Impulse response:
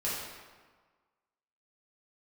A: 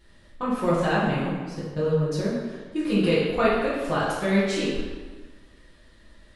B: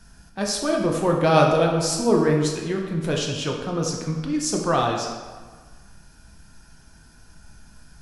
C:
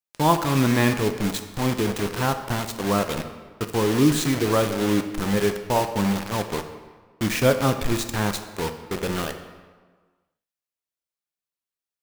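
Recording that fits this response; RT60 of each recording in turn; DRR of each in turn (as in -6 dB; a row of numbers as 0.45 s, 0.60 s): A; 1.5 s, 1.5 s, 1.5 s; -8.5 dB, 0.0 dB, 7.0 dB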